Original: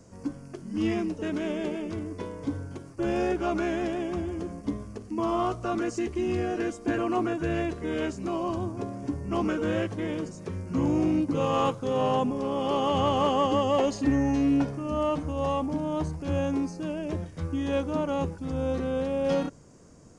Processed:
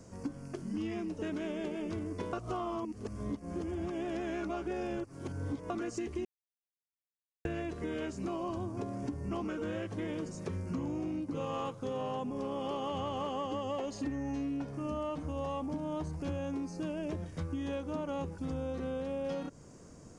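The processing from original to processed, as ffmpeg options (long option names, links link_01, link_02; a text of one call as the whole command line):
ffmpeg -i in.wav -filter_complex "[0:a]asplit=5[link_01][link_02][link_03][link_04][link_05];[link_01]atrim=end=2.332[link_06];[link_02]atrim=start=2.328:end=5.702,asetpts=PTS-STARTPTS,areverse[link_07];[link_03]atrim=start=5.698:end=6.25,asetpts=PTS-STARTPTS,afade=type=out:start_time=0.548:duration=0.004:curve=hsin[link_08];[link_04]atrim=start=6.25:end=7.45,asetpts=PTS-STARTPTS,volume=0[link_09];[link_05]atrim=start=7.45,asetpts=PTS-STARTPTS,afade=type=in:duration=0.004:curve=hsin[link_10];[link_06][link_07]acrossfade=duration=0.004:curve1=hsin:curve2=hsin[link_11];[link_08][link_09][link_10]concat=n=3:v=0:a=1[link_12];[link_11][link_12]acrossfade=duration=0.004:curve1=hsin:curve2=hsin,acompressor=threshold=-33dB:ratio=12" out.wav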